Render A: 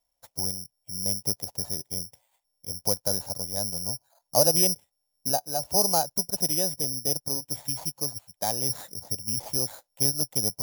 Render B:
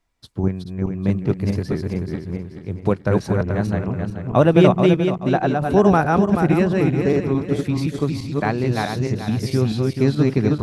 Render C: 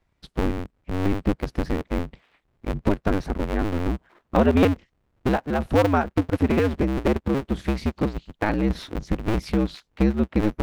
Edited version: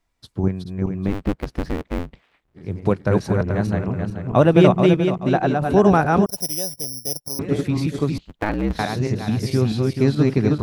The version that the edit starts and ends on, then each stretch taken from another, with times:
B
1.09–2.59 s: from C, crossfade 0.10 s
6.26–7.39 s: from A
8.18–8.79 s: from C

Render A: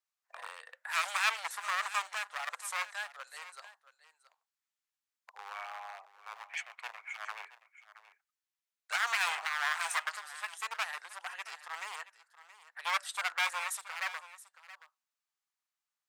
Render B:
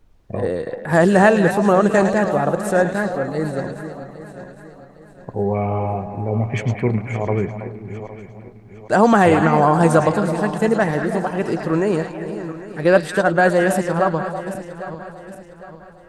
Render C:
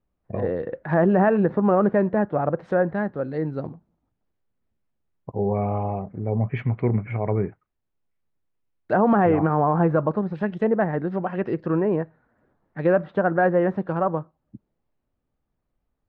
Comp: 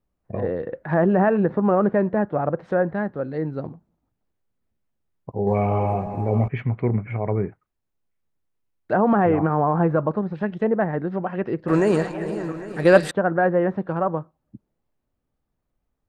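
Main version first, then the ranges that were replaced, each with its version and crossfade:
C
5.47–6.48 s: from B
11.68–13.11 s: from B
not used: A

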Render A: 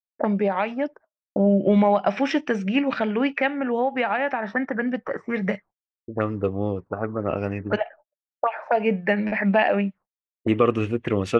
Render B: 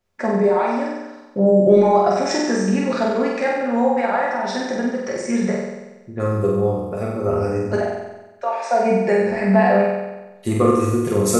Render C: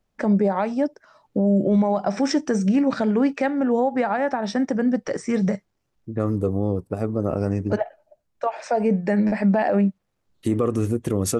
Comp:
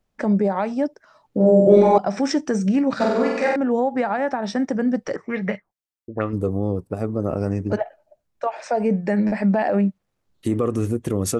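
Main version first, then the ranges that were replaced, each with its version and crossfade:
C
1.40–1.98 s: from B
3.00–3.56 s: from B
5.16–6.33 s: from A

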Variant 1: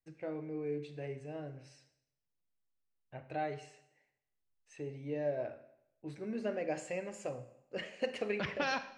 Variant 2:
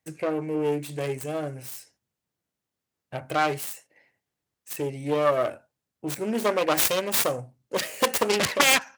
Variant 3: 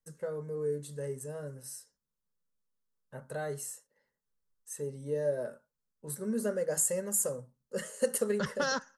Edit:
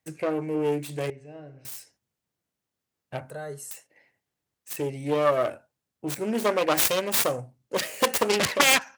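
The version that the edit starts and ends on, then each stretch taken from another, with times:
2
1.10–1.65 s: from 1
3.30–3.71 s: from 3

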